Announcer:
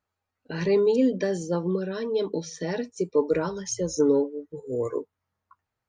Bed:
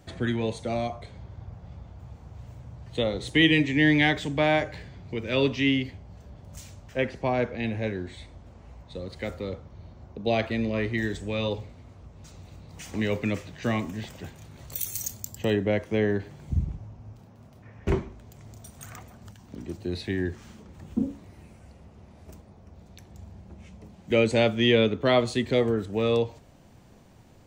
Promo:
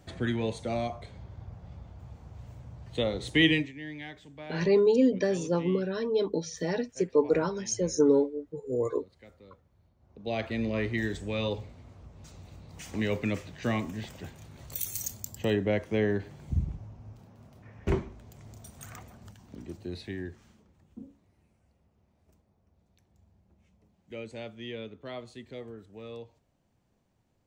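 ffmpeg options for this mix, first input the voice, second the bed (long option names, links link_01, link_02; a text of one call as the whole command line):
ffmpeg -i stem1.wav -i stem2.wav -filter_complex "[0:a]adelay=4000,volume=-1dB[link_01];[1:a]volume=15.5dB,afade=type=out:start_time=3.49:duration=0.23:silence=0.125893,afade=type=in:start_time=9.99:duration=0.68:silence=0.125893,afade=type=out:start_time=19.1:duration=1.74:silence=0.149624[link_02];[link_01][link_02]amix=inputs=2:normalize=0" out.wav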